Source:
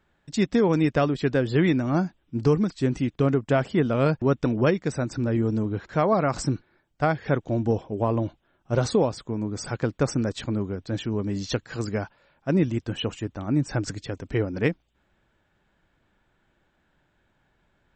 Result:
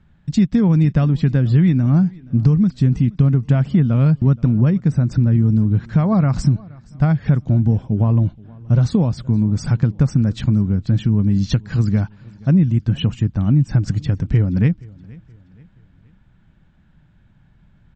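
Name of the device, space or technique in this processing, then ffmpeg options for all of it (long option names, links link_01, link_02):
jukebox: -filter_complex "[0:a]lowpass=6600,lowshelf=frequency=260:width_type=q:width=1.5:gain=13.5,acompressor=threshold=-17dB:ratio=3,asettb=1/sr,asplit=3[link_01][link_02][link_03];[link_01]atrim=end=4.404[link_04];[link_02]atrim=start=4.4:end=5.07,asetpts=PTS-STARTPTS,afade=type=in:duration=0.004:curve=qsin,afade=type=out:start_time=0.666:duration=0.004:curve=qsin,equalizer=frequency=3800:width_type=o:width=2.2:gain=-4.5[link_05];[link_03]atrim=start=5.066[link_06];[link_04][link_05]acrossfade=duration=0.004:curve1=hsin:curve2=qsin[link_07];[link_07][link_06]acrossfade=duration=0.004:curve1=qsin:curve2=hsin,aecho=1:1:474|948|1422:0.0668|0.0281|0.0118,volume=3.5dB"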